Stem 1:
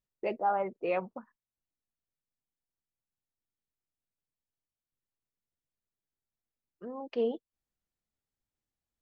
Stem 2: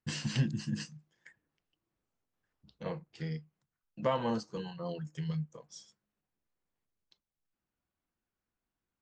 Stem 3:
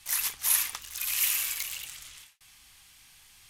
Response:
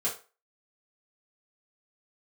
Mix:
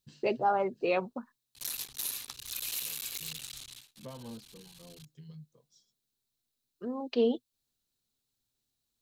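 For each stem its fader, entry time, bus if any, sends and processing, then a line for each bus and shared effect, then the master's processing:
0.0 dB, 0.00 s, no bus, no send, high shelf 2600 Hz +11.5 dB
-16.0 dB, 0.00 s, bus A, no send, auto duck -15 dB, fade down 0.35 s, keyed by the first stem
0.0 dB, 1.55 s, bus A, no send, cycle switcher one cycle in 3, muted
bus A: 0.0 dB, bell 1200 Hz -3.5 dB 1.9 oct; compressor 3:1, threshold -36 dBFS, peak gain reduction 12 dB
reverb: off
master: thirty-one-band EQ 125 Hz +10 dB, 250 Hz +8 dB, 400 Hz +5 dB, 2000 Hz -5 dB, 4000 Hz +9 dB

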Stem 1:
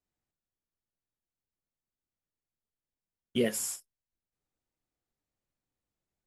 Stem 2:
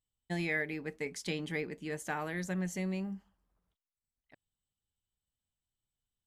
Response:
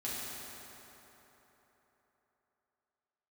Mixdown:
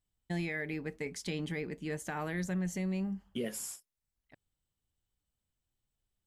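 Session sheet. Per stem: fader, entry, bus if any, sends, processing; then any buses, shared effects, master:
-6.5 dB, 0.00 s, no send, HPF 130 Hz
0.0 dB, 0.00 s, no send, dry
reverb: off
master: low shelf 170 Hz +7.5 dB; limiter -27 dBFS, peak gain reduction 6 dB

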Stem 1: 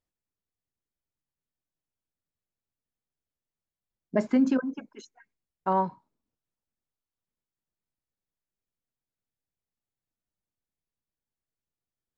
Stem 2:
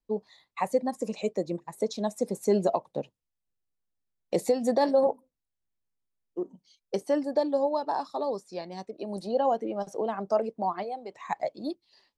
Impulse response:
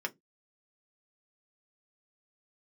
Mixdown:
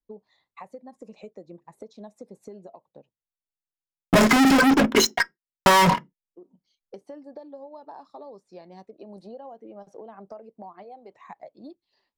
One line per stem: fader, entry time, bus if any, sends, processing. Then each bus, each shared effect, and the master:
+1.5 dB, 0.00 s, send -7 dB, fuzz box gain 50 dB, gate -56 dBFS
-5.0 dB, 0.00 s, no send, LPF 2300 Hz 6 dB/oct; compressor 6:1, threshold -34 dBFS, peak gain reduction 14.5 dB; auto duck -15 dB, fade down 1.75 s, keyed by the first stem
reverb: on, pre-delay 3 ms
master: compressor 6:1, threshold -14 dBFS, peak gain reduction 8 dB

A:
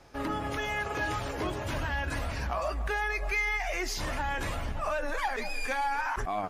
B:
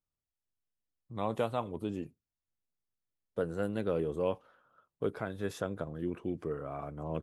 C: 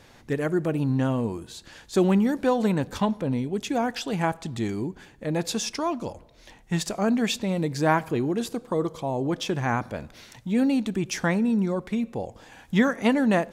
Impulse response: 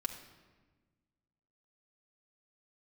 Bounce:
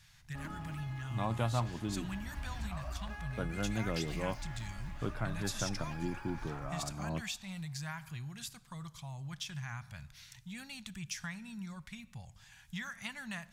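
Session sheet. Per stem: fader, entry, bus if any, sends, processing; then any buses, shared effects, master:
-8.0 dB, 0.20 s, bus A, send -18 dB, echo send -12 dB, median filter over 5 samples; low shelf 210 Hz +8 dB; crossover distortion -47.5 dBFS; auto duck -17 dB, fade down 0.55 s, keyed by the second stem
+0.5 dB, 0.00 s, no bus, no send, no echo send, bell 120 Hz +12.5 dB 0.21 oct
-7.5 dB, 0.00 s, bus A, send -16 dB, no echo send, EQ curve 150 Hz 0 dB, 280 Hz -27 dB, 1600 Hz -3 dB, 5700 Hz +2 dB
bus A: 0.0 dB, compressor, threshold -39 dBFS, peak gain reduction 8.5 dB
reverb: on, RT60 1.4 s, pre-delay 4 ms
echo: feedback echo 0.234 s, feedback 54%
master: bell 460 Hz -13.5 dB 0.57 oct

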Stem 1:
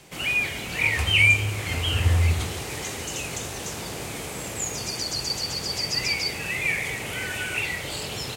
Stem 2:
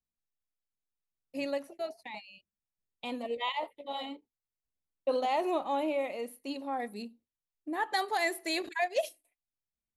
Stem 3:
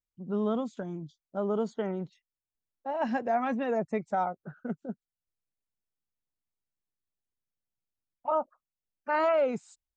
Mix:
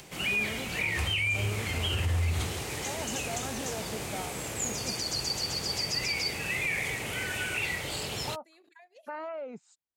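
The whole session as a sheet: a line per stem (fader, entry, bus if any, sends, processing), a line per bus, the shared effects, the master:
-3.0 dB, 0.00 s, no bus, no send, upward compressor, threshold -42 dBFS
-13.5 dB, 0.00 s, bus A, no send, compressor 16:1, threshold -39 dBFS, peak gain reduction 15.5 dB
-1.5 dB, 0.00 s, bus A, no send, high shelf 4500 Hz -5 dB
bus A: 0.0 dB, HPF 130 Hz; compressor 3:1, threshold -40 dBFS, peak gain reduction 11.5 dB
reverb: off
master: limiter -21 dBFS, peak gain reduction 10 dB

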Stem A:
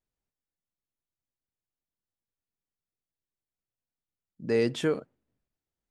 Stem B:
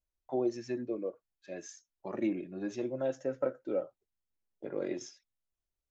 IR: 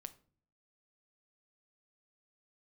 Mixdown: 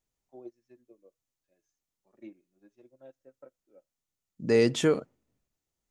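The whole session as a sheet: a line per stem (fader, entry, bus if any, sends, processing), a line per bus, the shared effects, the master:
+3.0 dB, 0.00 s, no send, bell 6600 Hz +6.5 dB 0.52 oct; notch 1600 Hz, Q 14
-12.5 dB, 0.00 s, no send, upward expander 2.5:1, over -41 dBFS; auto duck -17 dB, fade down 1.40 s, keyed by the first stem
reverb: off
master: dry

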